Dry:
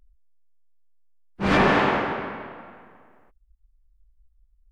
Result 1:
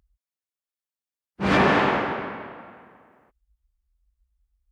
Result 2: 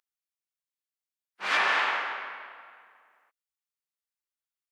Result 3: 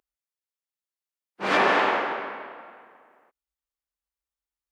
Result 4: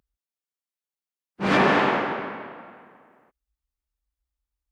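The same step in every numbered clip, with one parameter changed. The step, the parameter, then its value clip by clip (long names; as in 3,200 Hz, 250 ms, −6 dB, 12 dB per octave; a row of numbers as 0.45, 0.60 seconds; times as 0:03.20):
high-pass filter, corner frequency: 60, 1,300, 420, 150 Hertz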